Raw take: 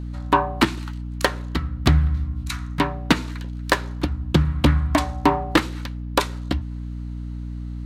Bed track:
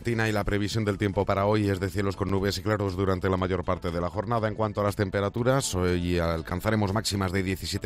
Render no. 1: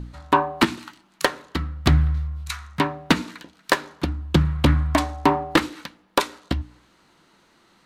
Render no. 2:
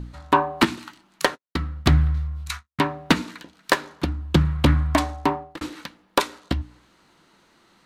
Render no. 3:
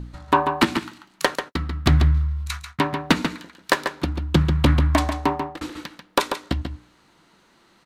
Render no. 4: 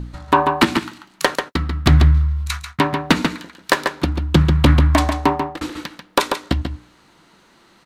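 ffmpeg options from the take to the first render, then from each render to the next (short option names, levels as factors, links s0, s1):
-af "bandreject=f=60:t=h:w=4,bandreject=f=120:t=h:w=4,bandreject=f=180:t=h:w=4,bandreject=f=240:t=h:w=4,bandreject=f=300:t=h:w=4"
-filter_complex "[0:a]asettb=1/sr,asplit=3[s0][s1][s2];[s0]atrim=end=1.244[s3];[s1]atrim=start=1.24:end=2.84,asetpts=PTS-STARTPTS,afade=t=in:d=0.004:c=qsin,afade=t=out:st=1.596:d=0.004:c=qsin,agate=range=0.00141:threshold=0.0158:ratio=16:release=100:detection=peak[s4];[s2]atrim=start=2.836[s5];[s3][s4]acrossfade=d=0.004:c1=hsin:c2=qsin[s6];[s6][s5]acrossfade=d=0.004:c1=qsin:c2=hsin,asplit=2[s7][s8];[s7]atrim=end=5.61,asetpts=PTS-STARTPTS,afade=t=out:st=5.09:d=0.52[s9];[s8]atrim=start=5.61,asetpts=PTS-STARTPTS,afade=t=in:d=0.004:c=hsin[s10];[s9][s10]concat=n=2:v=0:a=1"
-filter_complex "[0:a]asplit=2[s0][s1];[s1]adelay=139.9,volume=0.447,highshelf=f=4000:g=-3.15[s2];[s0][s2]amix=inputs=2:normalize=0"
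-af "volume=1.78,alimiter=limit=0.794:level=0:latency=1"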